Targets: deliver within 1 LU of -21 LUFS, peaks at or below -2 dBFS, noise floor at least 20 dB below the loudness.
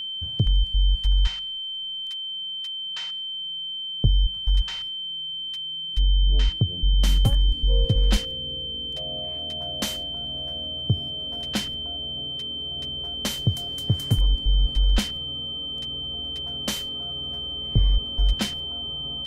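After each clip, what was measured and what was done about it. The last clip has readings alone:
steady tone 3.1 kHz; tone level -29 dBFS; loudness -25.5 LUFS; peak level -7.0 dBFS; loudness target -21.0 LUFS
-> band-stop 3.1 kHz, Q 30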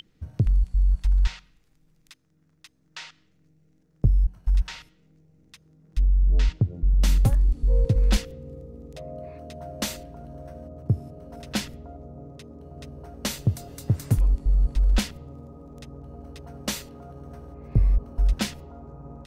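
steady tone not found; loudness -25.5 LUFS; peak level -8.0 dBFS; loudness target -21.0 LUFS
-> trim +4.5 dB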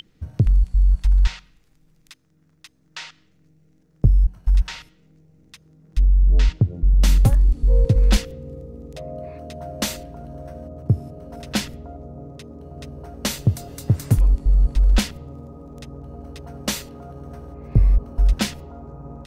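loudness -21.0 LUFS; peak level -3.5 dBFS; noise floor -60 dBFS

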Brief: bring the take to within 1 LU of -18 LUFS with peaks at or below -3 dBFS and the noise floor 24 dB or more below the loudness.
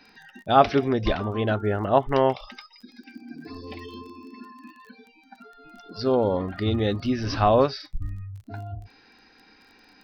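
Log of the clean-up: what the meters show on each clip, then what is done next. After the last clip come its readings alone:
tick rate 24 per s; loudness -23.5 LUFS; peak level -3.5 dBFS; loudness target -18.0 LUFS
-> de-click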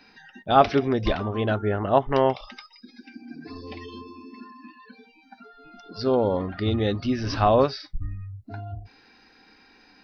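tick rate 0 per s; loudness -23.5 LUFS; peak level -3.5 dBFS; loudness target -18.0 LUFS
-> trim +5.5 dB; peak limiter -3 dBFS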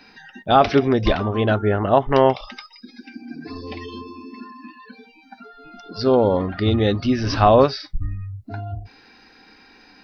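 loudness -18.5 LUFS; peak level -3.0 dBFS; noise floor -51 dBFS

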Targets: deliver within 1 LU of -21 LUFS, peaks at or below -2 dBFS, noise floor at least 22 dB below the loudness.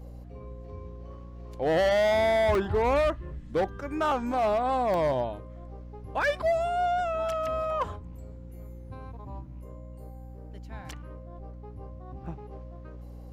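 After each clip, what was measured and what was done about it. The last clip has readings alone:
dropouts 3; longest dropout 1.2 ms; hum 60 Hz; highest harmonic 300 Hz; hum level -41 dBFS; loudness -27.0 LUFS; peak level -15.5 dBFS; loudness target -21.0 LUFS
-> interpolate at 2.55/4.94/12.26 s, 1.2 ms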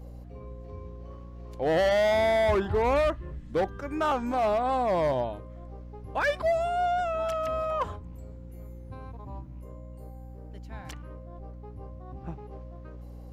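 dropouts 0; hum 60 Hz; highest harmonic 300 Hz; hum level -41 dBFS
-> de-hum 60 Hz, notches 5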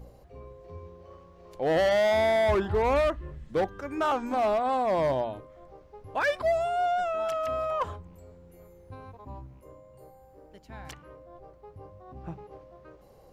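hum not found; loudness -27.0 LUFS; peak level -16.0 dBFS; loudness target -21.0 LUFS
-> trim +6 dB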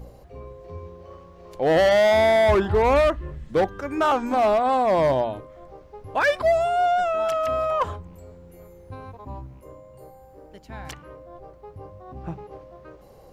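loudness -21.0 LUFS; peak level -10.0 dBFS; noise floor -49 dBFS

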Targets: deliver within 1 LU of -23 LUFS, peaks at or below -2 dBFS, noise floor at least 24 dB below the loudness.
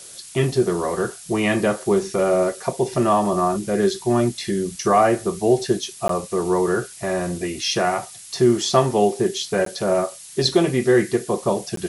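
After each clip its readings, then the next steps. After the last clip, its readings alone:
dropouts 3; longest dropout 13 ms; noise floor -41 dBFS; noise floor target -45 dBFS; loudness -21.0 LUFS; peak level -4.5 dBFS; loudness target -23.0 LUFS
-> interpolate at 6.08/9.65/11.76 s, 13 ms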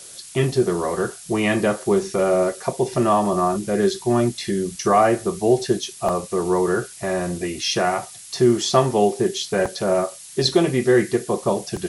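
dropouts 0; noise floor -41 dBFS; noise floor target -45 dBFS
-> noise print and reduce 6 dB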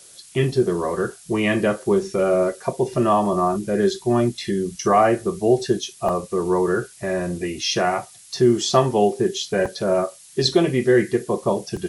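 noise floor -46 dBFS; loudness -21.0 LUFS; peak level -4.5 dBFS; loudness target -23.0 LUFS
-> trim -2 dB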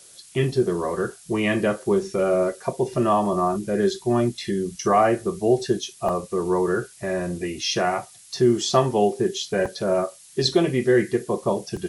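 loudness -23.0 LUFS; peak level -6.5 dBFS; noise floor -48 dBFS

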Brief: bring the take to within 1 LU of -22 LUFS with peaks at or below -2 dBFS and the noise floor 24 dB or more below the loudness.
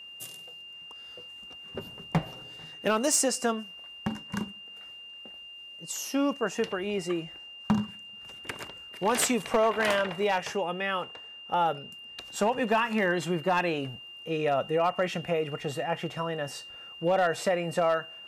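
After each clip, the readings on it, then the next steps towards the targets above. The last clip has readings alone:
clipped samples 0.2%; clipping level -17.5 dBFS; steady tone 2.8 kHz; tone level -43 dBFS; loudness -29.0 LUFS; peak level -17.5 dBFS; loudness target -22.0 LUFS
-> clip repair -17.5 dBFS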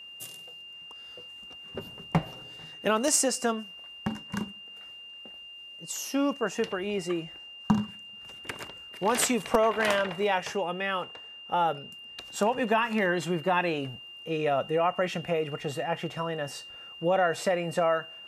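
clipped samples 0.0%; steady tone 2.8 kHz; tone level -43 dBFS
-> band-stop 2.8 kHz, Q 30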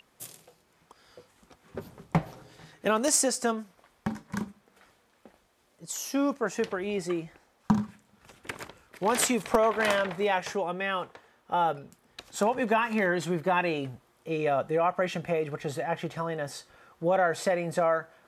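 steady tone not found; loudness -28.5 LUFS; peak level -9.0 dBFS; loudness target -22.0 LUFS
-> trim +6.5 dB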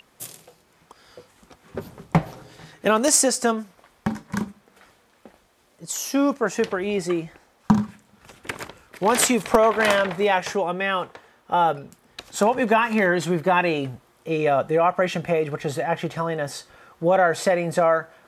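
loudness -22.0 LUFS; peak level -2.5 dBFS; noise floor -60 dBFS

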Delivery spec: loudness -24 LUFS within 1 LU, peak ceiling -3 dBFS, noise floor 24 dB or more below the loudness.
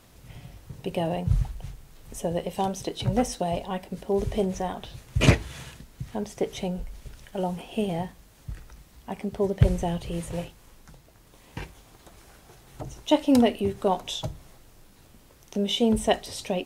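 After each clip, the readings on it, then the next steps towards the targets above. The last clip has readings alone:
tick rate 24 per s; loudness -27.5 LUFS; peak level -4.5 dBFS; loudness target -24.0 LUFS
-> de-click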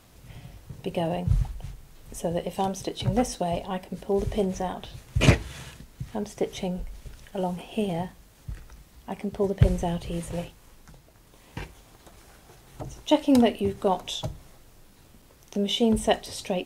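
tick rate 0.12 per s; loudness -27.5 LUFS; peak level -4.5 dBFS; loudness target -24.0 LUFS
-> trim +3.5 dB; peak limiter -3 dBFS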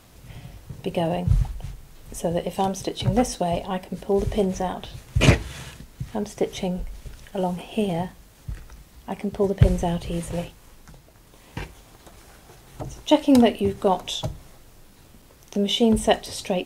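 loudness -24.0 LUFS; peak level -3.0 dBFS; noise floor -51 dBFS

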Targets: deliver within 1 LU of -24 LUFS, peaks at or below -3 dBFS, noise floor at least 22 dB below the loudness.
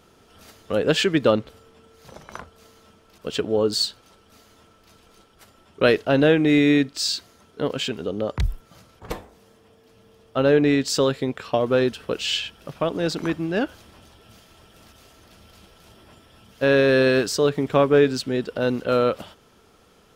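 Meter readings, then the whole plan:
loudness -21.5 LUFS; peak level -4.5 dBFS; loudness target -24.0 LUFS
-> trim -2.5 dB

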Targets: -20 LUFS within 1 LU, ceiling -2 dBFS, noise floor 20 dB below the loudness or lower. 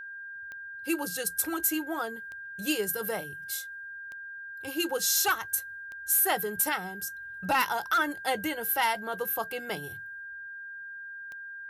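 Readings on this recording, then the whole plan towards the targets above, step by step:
clicks found 7; steady tone 1.6 kHz; tone level -39 dBFS; loudness -29.0 LUFS; peak level -15.5 dBFS; loudness target -20.0 LUFS
-> de-click; band-stop 1.6 kHz, Q 30; trim +9 dB

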